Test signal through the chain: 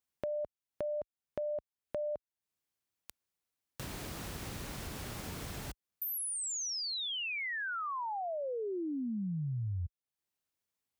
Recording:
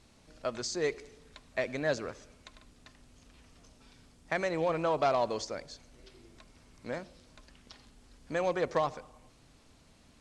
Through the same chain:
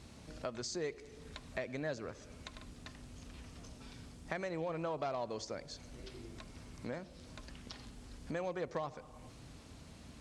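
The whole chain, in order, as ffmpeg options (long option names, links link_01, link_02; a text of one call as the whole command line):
ffmpeg -i in.wav -af "highpass=49,lowshelf=frequency=250:gain=6.5,acompressor=threshold=-48dB:ratio=2.5,volume=4.5dB" out.wav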